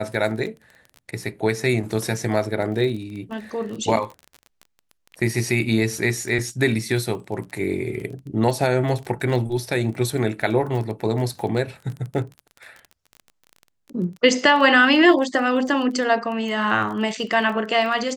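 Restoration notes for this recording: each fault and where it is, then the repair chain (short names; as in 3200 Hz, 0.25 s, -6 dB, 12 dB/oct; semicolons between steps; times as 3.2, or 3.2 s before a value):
crackle 24/s -30 dBFS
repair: de-click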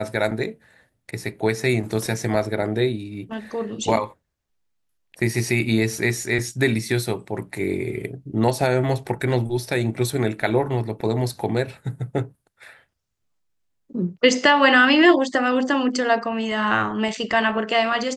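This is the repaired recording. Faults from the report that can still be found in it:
none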